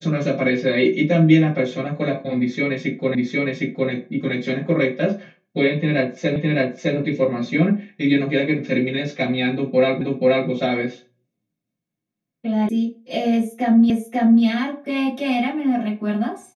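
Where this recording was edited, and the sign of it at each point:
3.15 repeat of the last 0.76 s
6.36 repeat of the last 0.61 s
10.01 repeat of the last 0.48 s
12.69 sound cut off
13.9 repeat of the last 0.54 s

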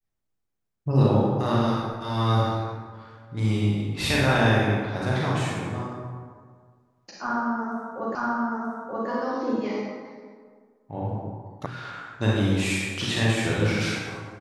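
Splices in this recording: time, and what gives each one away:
8.15 repeat of the last 0.93 s
11.66 sound cut off

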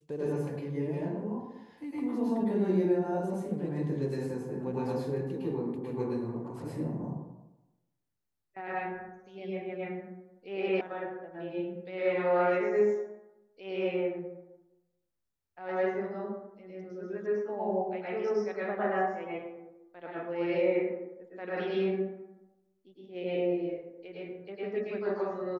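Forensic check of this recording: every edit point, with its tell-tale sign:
10.81 sound cut off

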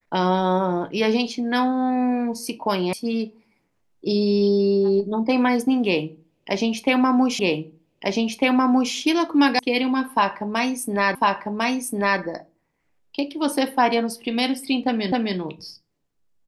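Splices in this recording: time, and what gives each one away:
2.93 sound cut off
7.39 repeat of the last 1.55 s
9.59 sound cut off
11.15 repeat of the last 1.05 s
15.12 repeat of the last 0.26 s

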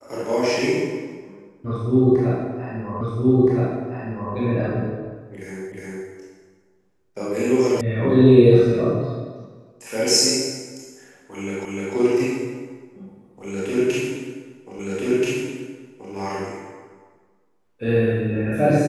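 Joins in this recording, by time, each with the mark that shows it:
3.01 repeat of the last 1.32 s
5.72 repeat of the last 0.36 s
7.81 sound cut off
11.65 repeat of the last 0.3 s
14.79 repeat of the last 1.33 s

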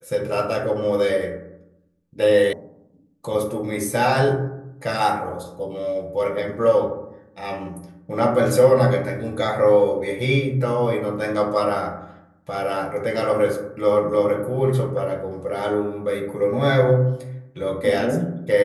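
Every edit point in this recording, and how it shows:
2.53 sound cut off

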